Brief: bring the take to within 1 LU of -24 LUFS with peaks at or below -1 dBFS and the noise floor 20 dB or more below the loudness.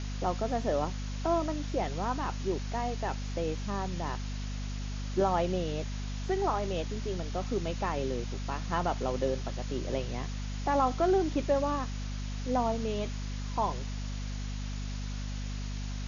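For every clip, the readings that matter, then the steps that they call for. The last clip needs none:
hum 50 Hz; harmonics up to 250 Hz; hum level -33 dBFS; noise floor -36 dBFS; noise floor target -53 dBFS; loudness -33.0 LUFS; peak -15.5 dBFS; loudness target -24.0 LUFS
-> notches 50/100/150/200/250 Hz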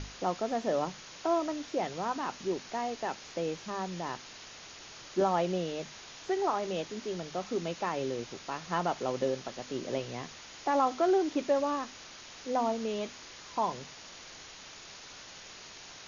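hum none; noise floor -49 dBFS; noise floor target -53 dBFS
-> denoiser 6 dB, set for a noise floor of -49 dBFS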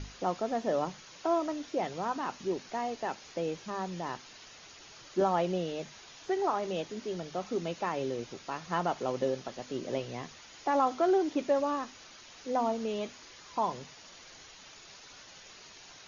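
noise floor -53 dBFS; loudness -33.0 LUFS; peak -15.5 dBFS; loudness target -24.0 LUFS
-> gain +9 dB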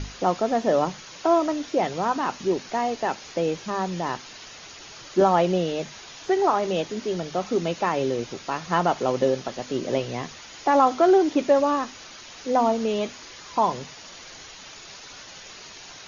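loudness -24.0 LUFS; peak -6.5 dBFS; noise floor -44 dBFS

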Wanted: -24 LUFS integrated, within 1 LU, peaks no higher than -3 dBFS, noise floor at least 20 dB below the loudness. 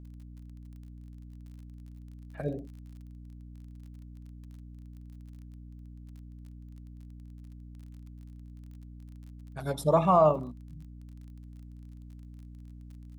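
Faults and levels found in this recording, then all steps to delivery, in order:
ticks 32/s; hum 60 Hz; harmonics up to 300 Hz; hum level -44 dBFS; loudness -27.0 LUFS; peak -11.5 dBFS; loudness target -24.0 LUFS
-> de-click; de-hum 60 Hz, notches 5; gain +3 dB

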